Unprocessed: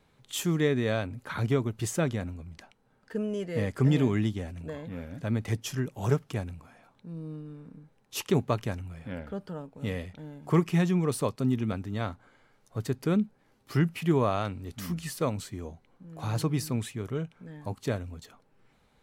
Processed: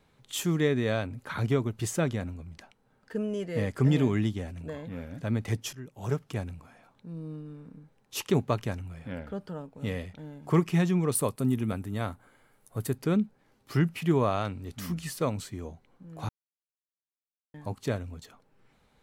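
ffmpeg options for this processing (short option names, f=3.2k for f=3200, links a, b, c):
-filter_complex "[0:a]asettb=1/sr,asplit=3[a][b][c];[a]atrim=end=11.154[d];[b]atrim=start=11.15:end=12.98,asetpts=PTS-STARTPTS,afade=t=in:d=0.004:c=qsin,afade=t=out:st=1.826:d=0.004:c=qsin,highshelf=f=7.6k:t=q:w=1.5:g=9.5[e];[c]atrim=start=12.976[f];[d][e]acrossfade=d=0.004:c1=hsin:c2=qsin[g];[g][f]acrossfade=d=0.004:c1=qsin:c2=hsin,asplit=4[h][i][j][k];[h]atrim=end=5.73,asetpts=PTS-STARTPTS,afade=t=out:st=5.726:d=0.004:c=hsin:silence=0.149624[l];[i]atrim=start=5.73:end=16.29,asetpts=PTS-STARTPTS,afade=t=in:d=0.7:silence=0.149624,afade=t=out:st=10.556:d=0.004:c=hsin[m];[j]atrim=start=16.29:end=17.54,asetpts=PTS-STARTPTS,volume=0[n];[k]atrim=start=17.54,asetpts=PTS-STARTPTS,afade=t=in:d=0.004:c=hsin[o];[l][m][n][o]concat=n=4:v=0:a=1"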